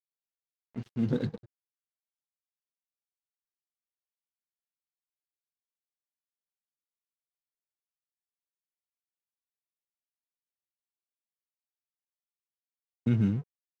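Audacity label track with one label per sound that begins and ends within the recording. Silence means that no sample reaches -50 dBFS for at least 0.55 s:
0.750000	1.450000	sound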